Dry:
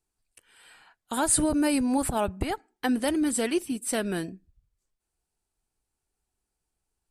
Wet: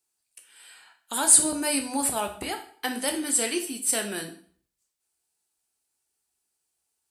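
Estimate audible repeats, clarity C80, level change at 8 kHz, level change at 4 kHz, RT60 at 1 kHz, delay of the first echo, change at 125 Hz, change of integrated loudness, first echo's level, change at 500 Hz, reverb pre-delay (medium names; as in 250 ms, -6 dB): no echo, 14.5 dB, +8.0 dB, +5.0 dB, 0.50 s, no echo, -10.0 dB, +3.0 dB, no echo, -3.0 dB, 5 ms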